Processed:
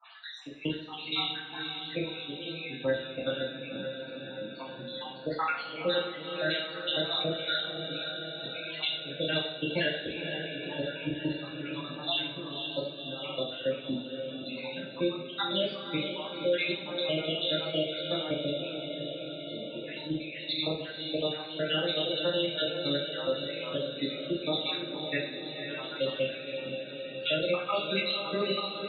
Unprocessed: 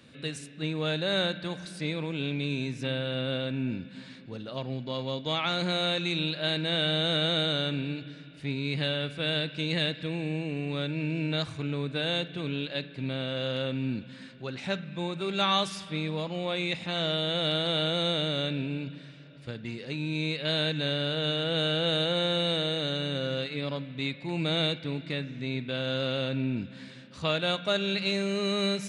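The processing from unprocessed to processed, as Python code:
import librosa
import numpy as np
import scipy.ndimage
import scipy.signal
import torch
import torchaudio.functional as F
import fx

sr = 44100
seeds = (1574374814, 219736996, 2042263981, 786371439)

y = fx.spec_dropout(x, sr, seeds[0], share_pct=75)
y = scipy.signal.sosfilt(scipy.signal.butter(4, 4100.0, 'lowpass', fs=sr, output='sos'), y)
y = fx.dereverb_blind(y, sr, rt60_s=1.8)
y = scipy.signal.sosfilt(scipy.signal.butter(2, 270.0, 'highpass', fs=sr, output='sos'), y)
y = fx.level_steps(y, sr, step_db=18)
y = fx.echo_diffused(y, sr, ms=521, feedback_pct=65, wet_db=-9)
y = fx.spec_topn(y, sr, count=64)
y = fx.rev_double_slope(y, sr, seeds[1], early_s=0.51, late_s=2.1, knee_db=-18, drr_db=-9.0)
y = fx.band_squash(y, sr, depth_pct=40)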